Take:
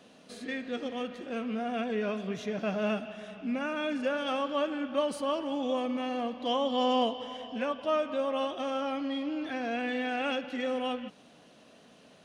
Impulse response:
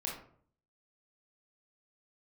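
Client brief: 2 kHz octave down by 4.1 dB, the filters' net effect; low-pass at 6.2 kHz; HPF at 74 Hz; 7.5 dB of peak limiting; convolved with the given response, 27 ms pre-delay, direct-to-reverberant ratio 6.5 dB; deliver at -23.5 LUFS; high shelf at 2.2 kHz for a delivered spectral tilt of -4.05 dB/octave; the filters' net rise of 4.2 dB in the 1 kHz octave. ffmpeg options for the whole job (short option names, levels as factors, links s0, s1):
-filter_complex "[0:a]highpass=74,lowpass=6200,equalizer=f=1000:t=o:g=8.5,equalizer=f=2000:t=o:g=-5,highshelf=f=2200:g=-8,alimiter=limit=0.0841:level=0:latency=1,asplit=2[s0][s1];[1:a]atrim=start_sample=2205,adelay=27[s2];[s1][s2]afir=irnorm=-1:irlink=0,volume=0.398[s3];[s0][s3]amix=inputs=2:normalize=0,volume=2.37"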